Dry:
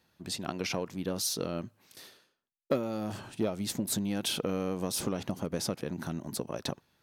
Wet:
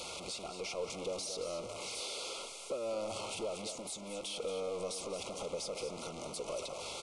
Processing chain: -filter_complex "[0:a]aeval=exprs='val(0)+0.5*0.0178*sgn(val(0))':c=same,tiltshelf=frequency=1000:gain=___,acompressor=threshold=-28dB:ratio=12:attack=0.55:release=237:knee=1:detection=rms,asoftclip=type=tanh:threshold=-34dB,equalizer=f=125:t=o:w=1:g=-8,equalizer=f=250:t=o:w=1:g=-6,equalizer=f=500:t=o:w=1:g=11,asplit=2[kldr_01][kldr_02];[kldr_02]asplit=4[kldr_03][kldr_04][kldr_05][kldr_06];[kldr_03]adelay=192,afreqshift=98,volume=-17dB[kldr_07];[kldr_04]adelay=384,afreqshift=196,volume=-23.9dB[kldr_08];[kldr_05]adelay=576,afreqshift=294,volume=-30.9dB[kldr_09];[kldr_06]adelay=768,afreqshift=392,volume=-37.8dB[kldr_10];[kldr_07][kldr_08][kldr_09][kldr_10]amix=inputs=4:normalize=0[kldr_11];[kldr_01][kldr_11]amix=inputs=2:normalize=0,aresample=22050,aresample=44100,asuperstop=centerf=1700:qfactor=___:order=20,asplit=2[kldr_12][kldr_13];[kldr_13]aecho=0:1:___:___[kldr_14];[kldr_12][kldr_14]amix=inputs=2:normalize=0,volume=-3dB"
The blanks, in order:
-5.5, 2.6, 226, 0.316